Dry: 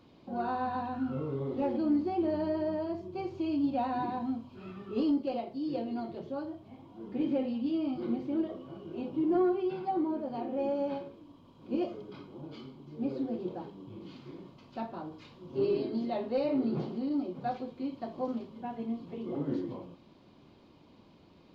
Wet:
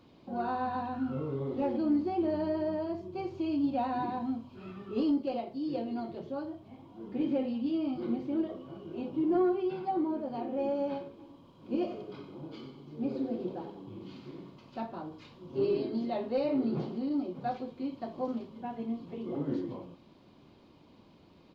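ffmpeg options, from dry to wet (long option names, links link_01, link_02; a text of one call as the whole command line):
ffmpeg -i in.wav -filter_complex "[0:a]asplit=3[link_01][link_02][link_03];[link_01]afade=type=out:start_time=11.18:duration=0.02[link_04];[link_02]aecho=1:1:94|188|282|376|470:0.355|0.16|0.0718|0.0323|0.0145,afade=type=in:start_time=11.18:duration=0.02,afade=type=out:start_time=14.82:duration=0.02[link_05];[link_03]afade=type=in:start_time=14.82:duration=0.02[link_06];[link_04][link_05][link_06]amix=inputs=3:normalize=0" out.wav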